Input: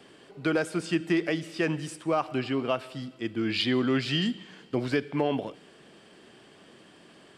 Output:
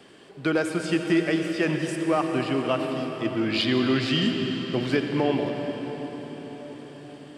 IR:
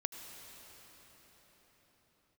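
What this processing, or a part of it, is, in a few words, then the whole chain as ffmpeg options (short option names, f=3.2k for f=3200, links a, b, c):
cathedral: -filter_complex "[1:a]atrim=start_sample=2205[a];[0:a][a]afir=irnorm=-1:irlink=0,volume=3.5dB"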